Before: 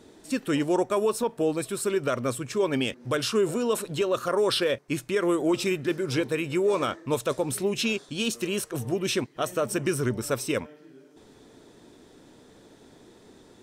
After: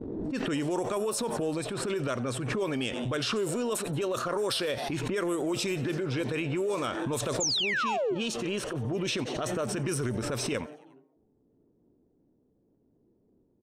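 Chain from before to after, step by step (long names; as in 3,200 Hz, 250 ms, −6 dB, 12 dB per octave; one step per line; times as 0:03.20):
downward expander −43 dBFS
low-pass that shuts in the quiet parts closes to 350 Hz, open at −20 dBFS
high-shelf EQ 7,700 Hz +11 dB
sound drawn into the spectrogram fall, 0:07.40–0:08.15, 330–7,500 Hz −20 dBFS
transient designer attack −10 dB, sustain +2 dB
downward compressor, threshold −27 dBFS, peak gain reduction 9.5 dB
echo with shifted repeats 89 ms, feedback 59%, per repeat +120 Hz, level −22 dB
background raised ahead of every attack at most 26 dB per second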